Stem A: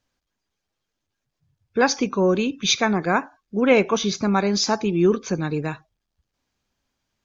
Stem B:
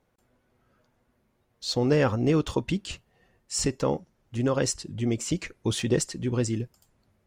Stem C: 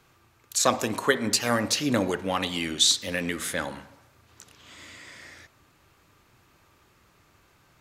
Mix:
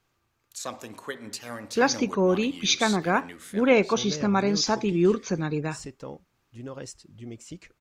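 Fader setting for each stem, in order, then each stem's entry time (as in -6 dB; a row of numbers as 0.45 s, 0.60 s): -3.0 dB, -13.5 dB, -13.0 dB; 0.00 s, 2.20 s, 0.00 s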